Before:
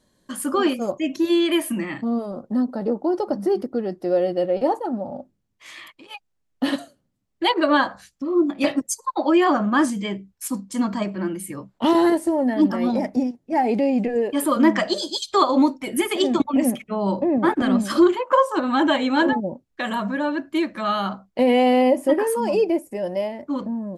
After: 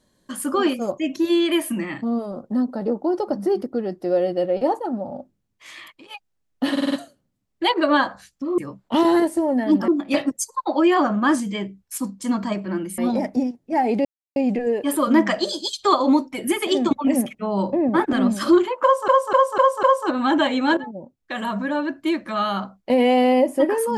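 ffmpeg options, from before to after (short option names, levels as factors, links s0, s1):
-filter_complex "[0:a]asplit=14[s0][s1][s2][s3][s4][s5][s6][s7][s8][s9][s10][s11][s12][s13];[s0]atrim=end=6.772[s14];[s1]atrim=start=6.718:end=6.772[s15];[s2]atrim=start=6.718:end=6.772[s16];[s3]atrim=start=6.718:end=6.772[s17];[s4]atrim=start=6.718:end=8.382[s18];[s5]atrim=start=11.478:end=12.782[s19];[s6]atrim=start=8.378:end=11.482[s20];[s7]atrim=start=12.778:end=13.85,asetpts=PTS-STARTPTS,afade=t=out:st=1.068:d=0.004:c=hsin,apad=pad_dur=0.31[s21];[s8]atrim=start=13.85:end=18.572,asetpts=PTS-STARTPTS,afade=t=in:d=0.004:c=hsin[s22];[s9]atrim=start=18.318:end=18.572[s23];[s10]atrim=start=18.318:end=18.572[s24];[s11]atrim=start=18.318:end=18.572[s25];[s12]atrim=start=18.318:end=19.26,asetpts=PTS-STARTPTS,afade=t=out:st=0.938:d=0.004:c=hsin:silence=0.188365[s26];[s13]atrim=start=19.26,asetpts=PTS-STARTPTS,afade=t=in:d=0.79:silence=0.188365[s27];[s14][s15]acrossfade=d=0.004:c1=hsin:c2=hsin[s28];[s28][s16]acrossfade=d=0.004:c1=hsin:c2=hsin[s29];[s29][s17]acrossfade=d=0.004:c1=hsin:c2=hsin[s30];[s30][s18]acrossfade=d=0.004:c1=hsin:c2=hsin[s31];[s31][s19]acrossfade=d=0.004:c1=hsin:c2=hsin[s32];[s32][s20]acrossfade=d=0.004:c1=hsin:c2=hsin[s33];[s21][s22]concat=n=2:v=0:a=1[s34];[s33][s34]acrossfade=d=0.004:c1=hsin:c2=hsin[s35];[s35][s23]acrossfade=d=0.004:c1=hsin:c2=hsin[s36];[s36][s24]acrossfade=d=0.004:c1=hsin:c2=hsin[s37];[s37][s25]acrossfade=d=0.004:c1=hsin:c2=hsin[s38];[s26][s27]concat=n=2:v=0:a=1[s39];[s38][s39]acrossfade=d=0.004:c1=hsin:c2=hsin"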